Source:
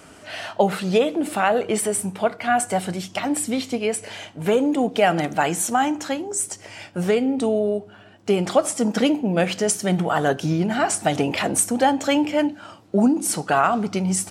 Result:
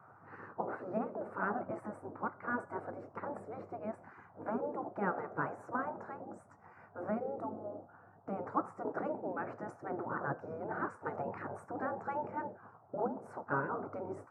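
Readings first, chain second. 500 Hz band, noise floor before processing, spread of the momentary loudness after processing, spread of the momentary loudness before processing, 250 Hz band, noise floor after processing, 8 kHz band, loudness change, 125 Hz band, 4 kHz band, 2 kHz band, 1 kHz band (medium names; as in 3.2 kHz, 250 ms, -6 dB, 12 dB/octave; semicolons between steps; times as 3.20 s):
-18.0 dB, -47 dBFS, 11 LU, 8 LU, -20.5 dB, -60 dBFS, under -40 dB, -18.0 dB, -20.0 dB, under -40 dB, -15.5 dB, -15.0 dB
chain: band noise 190–630 Hz -44 dBFS; elliptic band-pass 110–1300 Hz, stop band 40 dB; spectral gate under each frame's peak -10 dB weak; trim -6 dB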